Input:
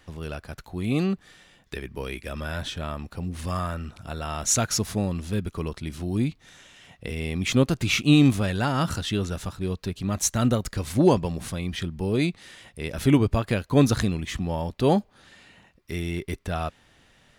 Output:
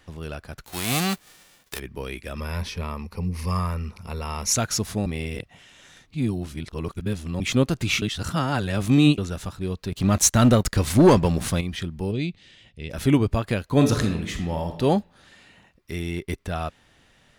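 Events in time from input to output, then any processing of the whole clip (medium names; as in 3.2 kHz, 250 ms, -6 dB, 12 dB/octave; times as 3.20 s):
0.65–1.78 s: formants flattened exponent 0.3
2.37–4.53 s: rippled EQ curve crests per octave 0.85, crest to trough 11 dB
5.06–7.40 s: reverse
8.02–9.18 s: reverse
9.92–11.61 s: waveshaping leveller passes 2
12.11–12.90 s: FFT filter 120 Hz 0 dB, 650 Hz -9 dB, 1.2 kHz -14 dB, 3 kHz -1 dB, 8 kHz -12 dB, 12 kHz -30 dB
13.65–14.80 s: reverb throw, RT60 0.81 s, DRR 5.5 dB
15.99–16.39 s: transient shaper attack +4 dB, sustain -5 dB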